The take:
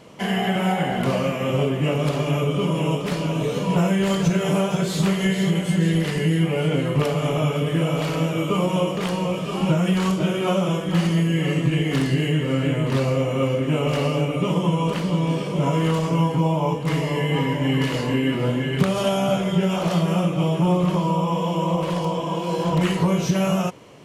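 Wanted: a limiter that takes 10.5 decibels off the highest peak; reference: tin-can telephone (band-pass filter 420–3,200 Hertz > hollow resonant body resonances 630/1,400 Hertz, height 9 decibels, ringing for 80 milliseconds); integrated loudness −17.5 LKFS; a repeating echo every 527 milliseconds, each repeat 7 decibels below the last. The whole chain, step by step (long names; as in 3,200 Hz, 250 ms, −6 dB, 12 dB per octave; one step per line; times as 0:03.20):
brickwall limiter −17 dBFS
band-pass filter 420–3,200 Hz
repeating echo 527 ms, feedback 45%, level −7 dB
hollow resonant body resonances 630/1,400 Hz, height 9 dB, ringing for 80 ms
level +11 dB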